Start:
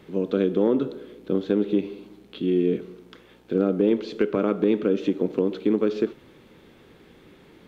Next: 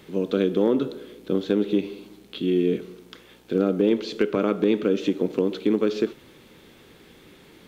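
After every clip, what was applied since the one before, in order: treble shelf 3.1 kHz +10 dB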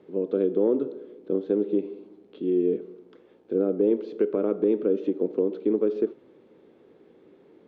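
band-pass filter 420 Hz, Q 1.4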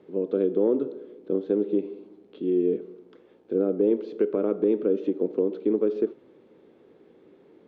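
no audible change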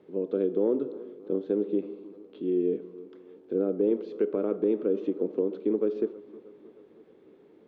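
tape echo 315 ms, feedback 63%, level -18 dB, low-pass 2.5 kHz; trim -3 dB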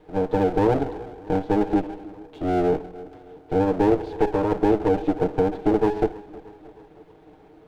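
comb filter that takes the minimum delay 6.5 ms; trim +7.5 dB

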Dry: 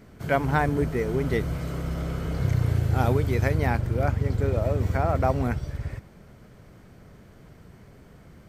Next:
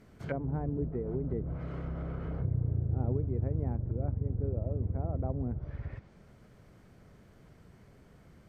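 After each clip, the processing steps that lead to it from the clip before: low-pass that closes with the level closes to 420 Hz, closed at -21 dBFS; trim -7.5 dB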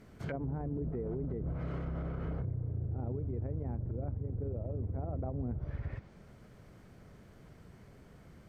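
peak limiter -30.5 dBFS, peak gain reduction 10.5 dB; trim +1.5 dB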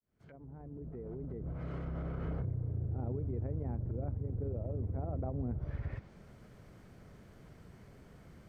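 fade-in on the opening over 2.32 s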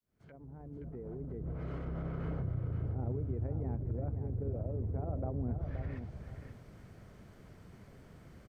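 feedback delay 525 ms, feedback 23%, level -8 dB

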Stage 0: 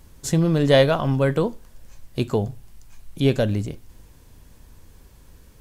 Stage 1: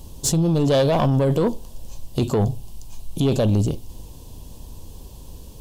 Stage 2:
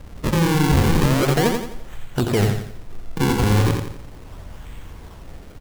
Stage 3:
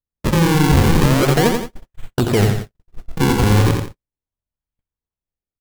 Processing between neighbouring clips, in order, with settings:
high-order bell 1.7 kHz -15 dB 1.1 oct; in parallel at +1.5 dB: compressor with a negative ratio -23 dBFS, ratio -0.5; on the sum: saturation -12.5 dBFS, distortion -14 dB
peaking EQ 3.2 kHz +11 dB 0.49 oct; decimation with a swept rate 40×, swing 160% 0.37 Hz; feedback delay 86 ms, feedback 41%, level -5 dB
gate -26 dBFS, range -58 dB; trim +3.5 dB

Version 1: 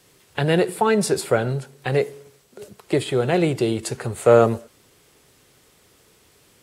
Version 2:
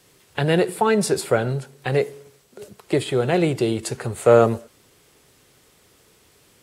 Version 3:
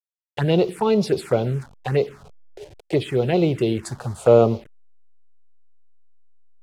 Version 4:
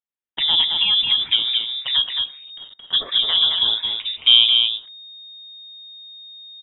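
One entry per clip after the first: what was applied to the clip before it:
no audible change
send-on-delta sampling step -37.5 dBFS; touch-sensitive phaser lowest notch 170 Hz, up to 1.7 kHz, full sweep at -15.5 dBFS; distance through air 51 m; trim +1.5 dB
frequency inversion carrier 3.7 kHz; delay 220 ms -4.5 dB; reverberation RT60 0.45 s, pre-delay 3 ms, DRR 19 dB

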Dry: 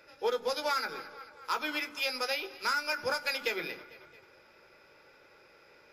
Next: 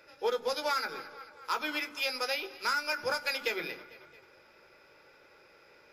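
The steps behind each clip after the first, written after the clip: hum notches 50/100/150/200/250 Hz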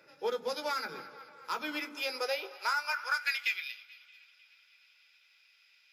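feedback echo behind a band-pass 311 ms, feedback 68%, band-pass 1.6 kHz, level -21.5 dB; high-pass sweep 160 Hz -> 3 kHz, 1.60–3.67 s; trim -3.5 dB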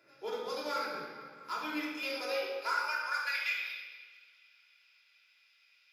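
simulated room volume 1200 m³, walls mixed, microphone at 3.1 m; trim -7.5 dB

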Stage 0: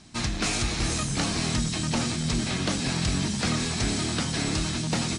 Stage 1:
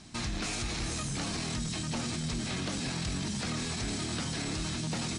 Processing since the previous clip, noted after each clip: peak limiter -26 dBFS, peak gain reduction 10 dB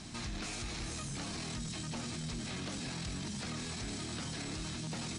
peak limiter -36.5 dBFS, peak gain reduction 10.5 dB; trim +4 dB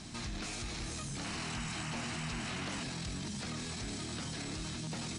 painted sound noise, 1.24–2.84 s, 640–3100 Hz -45 dBFS

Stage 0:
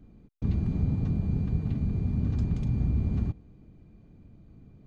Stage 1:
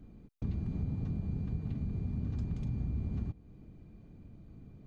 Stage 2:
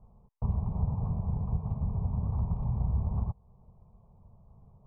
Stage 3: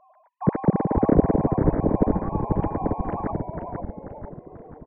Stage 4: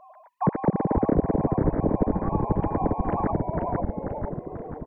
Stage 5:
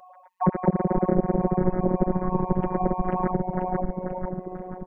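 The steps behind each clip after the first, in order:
compression 2:1, threshold -38 dBFS, peak gain reduction 9.5 dB
resonant low-pass 1 kHz, resonance Q 5.2; static phaser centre 720 Hz, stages 4; upward expansion 1.5:1, over -54 dBFS; trim +8.5 dB
formants replaced by sine waves; frequency-shifting echo 489 ms, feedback 53%, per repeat -120 Hz, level -3 dB; trim +5.5 dB
compression 3:1, threshold -29 dBFS, peak gain reduction 14 dB; trim +7 dB
robot voice 183 Hz; trim +2.5 dB

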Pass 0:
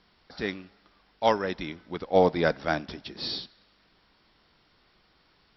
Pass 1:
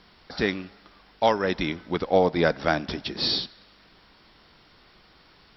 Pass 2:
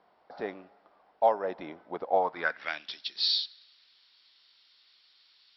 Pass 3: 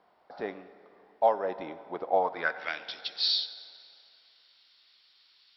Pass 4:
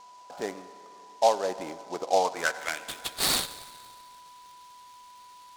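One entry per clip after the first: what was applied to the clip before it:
compression 2.5:1, threshold -28 dBFS, peak gain reduction 9 dB; trim +8.5 dB
band-pass sweep 700 Hz -> 4 kHz, 2.08–2.96 s
plate-style reverb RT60 2.8 s, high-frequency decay 0.75×, DRR 13.5 dB
whistle 990 Hz -50 dBFS; delay time shaken by noise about 4.5 kHz, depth 0.039 ms; trim +2 dB

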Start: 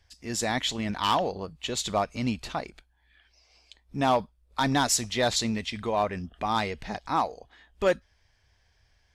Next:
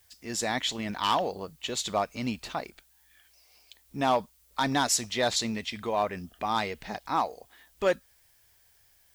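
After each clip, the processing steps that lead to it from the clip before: bass shelf 130 Hz -9 dB; added noise blue -63 dBFS; trim -1 dB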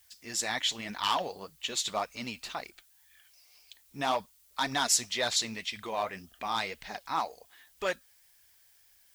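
tilt shelf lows -5 dB, about 900 Hz; flange 1.9 Hz, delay 0.4 ms, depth 8.3 ms, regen +51%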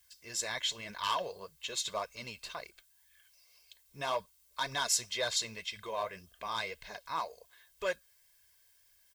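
comb 1.9 ms, depth 66%; trim -5.5 dB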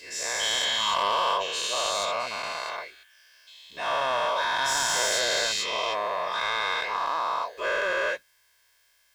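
every event in the spectrogram widened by 480 ms; overdrive pedal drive 14 dB, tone 3 kHz, clips at -7 dBFS; trim -5 dB

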